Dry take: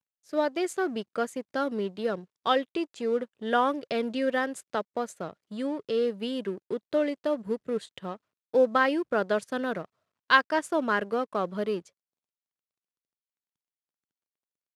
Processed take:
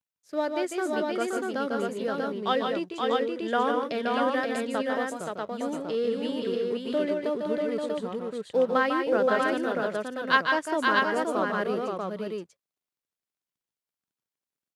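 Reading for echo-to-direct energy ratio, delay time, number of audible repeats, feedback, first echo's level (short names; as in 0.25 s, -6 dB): 1.0 dB, 0.149 s, 3, no steady repeat, -5.5 dB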